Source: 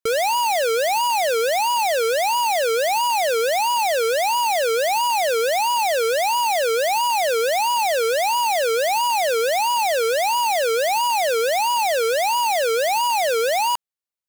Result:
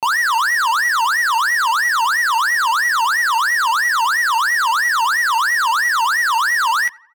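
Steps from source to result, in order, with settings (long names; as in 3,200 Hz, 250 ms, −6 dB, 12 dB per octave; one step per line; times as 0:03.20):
high-pass filter 50 Hz 12 dB per octave
high-shelf EQ 2,300 Hz −8.5 dB
double-tracking delay 27 ms −9.5 dB
on a send: tape delay 172 ms, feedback 56%, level −22.5 dB, low-pass 1,200 Hz
on the sum: wrong playback speed 7.5 ips tape played at 15 ips
level +4 dB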